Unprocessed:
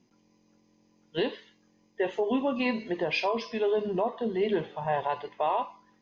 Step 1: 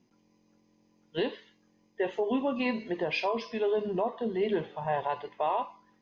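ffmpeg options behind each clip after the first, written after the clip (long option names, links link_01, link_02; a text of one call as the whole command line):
ffmpeg -i in.wav -af "highshelf=frequency=5500:gain=-4.5,volume=-1.5dB" out.wav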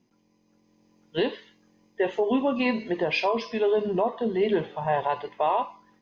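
ffmpeg -i in.wav -af "dynaudnorm=framelen=460:gausssize=3:maxgain=5dB" out.wav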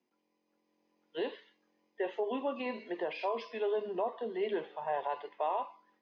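ffmpeg -i in.wav -filter_complex "[0:a]acrossover=split=280 4900:gain=0.0631 1 0.141[link_01][link_02][link_03];[link_01][link_02][link_03]amix=inputs=3:normalize=0,acrossover=split=150|990[link_04][link_05][link_06];[link_06]alimiter=level_in=3.5dB:limit=-24dB:level=0:latency=1,volume=-3.5dB[link_07];[link_04][link_05][link_07]amix=inputs=3:normalize=0,volume=-8dB" out.wav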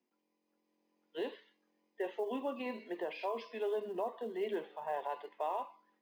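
ffmpeg -i in.wav -af "lowshelf=frequency=150:width_type=q:width=1.5:gain=-8.5,acrusher=bits=9:mode=log:mix=0:aa=0.000001,volume=-4dB" out.wav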